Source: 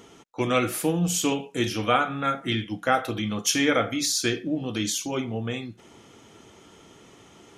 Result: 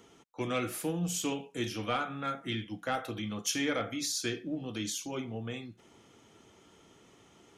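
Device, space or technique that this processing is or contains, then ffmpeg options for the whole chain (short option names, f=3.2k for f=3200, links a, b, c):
one-band saturation: -filter_complex "[0:a]acrossover=split=310|2700[a][b][c];[b]asoftclip=type=tanh:threshold=-17dB[d];[a][d][c]amix=inputs=3:normalize=0,volume=-8.5dB"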